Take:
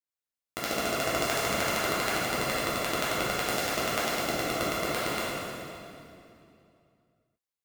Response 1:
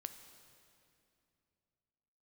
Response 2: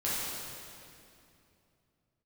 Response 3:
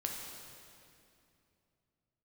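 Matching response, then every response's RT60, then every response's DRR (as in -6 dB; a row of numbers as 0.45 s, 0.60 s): 2; 2.7 s, 2.7 s, 2.7 s; 8.5 dB, -9.5 dB, 0.0 dB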